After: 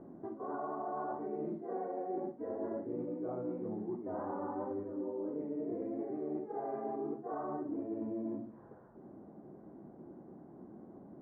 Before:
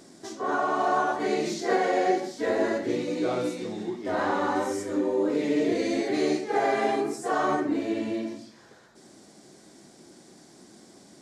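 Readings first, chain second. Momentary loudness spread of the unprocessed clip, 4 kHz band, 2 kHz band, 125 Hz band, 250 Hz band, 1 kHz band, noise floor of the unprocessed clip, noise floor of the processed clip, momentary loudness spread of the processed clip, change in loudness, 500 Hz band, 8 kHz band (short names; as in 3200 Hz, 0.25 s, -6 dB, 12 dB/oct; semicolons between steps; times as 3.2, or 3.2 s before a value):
7 LU, under -40 dB, -27.0 dB, -8.0 dB, -11.0 dB, -14.5 dB, -54 dBFS, -55 dBFS, 15 LU, -13.0 dB, -12.5 dB, under -35 dB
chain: LPF 1100 Hz 24 dB/oct; low shelf 390 Hz +5 dB; reverse; compressor 12:1, threshold -33 dBFS, peak gain reduction 16.5 dB; reverse; gain -2.5 dB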